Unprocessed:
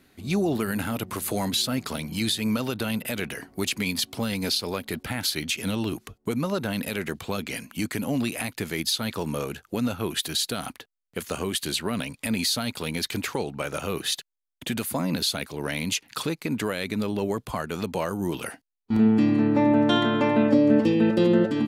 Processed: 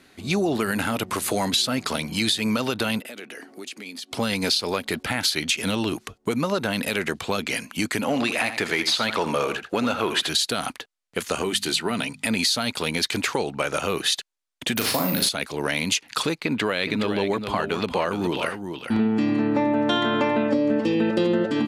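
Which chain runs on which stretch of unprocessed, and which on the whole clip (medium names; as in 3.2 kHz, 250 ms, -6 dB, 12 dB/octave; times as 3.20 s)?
3.00–4.12 s: band-stop 990 Hz, Q 8.8 + compression 3:1, threshold -45 dBFS + resonant high-pass 280 Hz, resonance Q 1.5
8.01–10.29 s: overdrive pedal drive 12 dB, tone 2.6 kHz, clips at -14 dBFS + delay 83 ms -11 dB
11.42–12.27 s: peaking EQ 75 Hz -7 dB 0.31 oct + hum notches 50/100/150/200/250 Hz + comb of notches 550 Hz
14.76–15.29 s: flutter echo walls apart 6.5 m, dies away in 0.42 s + careless resampling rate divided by 3×, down none, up zero stuff
16.38–19.08 s: resonant high shelf 5.1 kHz -7 dB, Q 1.5 + delay 416 ms -8.5 dB
whole clip: low-pass 9.4 kHz 12 dB/octave; bass shelf 250 Hz -9 dB; compression 5:1, threshold -26 dBFS; trim +7.5 dB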